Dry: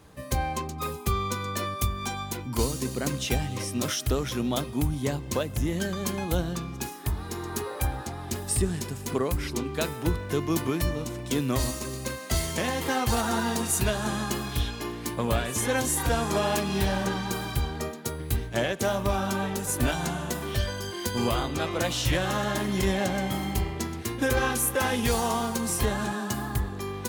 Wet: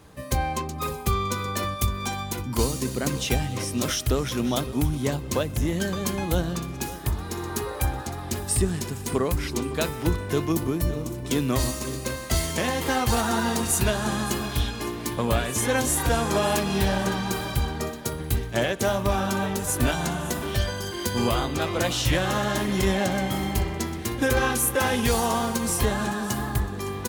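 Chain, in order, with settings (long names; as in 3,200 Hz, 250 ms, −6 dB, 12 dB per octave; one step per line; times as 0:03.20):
0:10.52–0:11.25: parametric band 2,500 Hz −8.5 dB 3 octaves
repeating echo 561 ms, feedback 38%, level −16 dB
level +2.5 dB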